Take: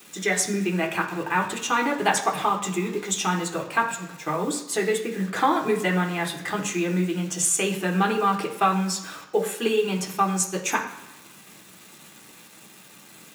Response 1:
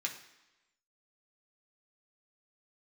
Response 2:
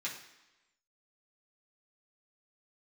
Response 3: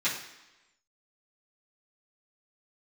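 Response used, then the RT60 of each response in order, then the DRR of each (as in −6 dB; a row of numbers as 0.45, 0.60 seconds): 1; 1.0, 1.0, 1.0 seconds; −0.5, −6.5, −12.5 decibels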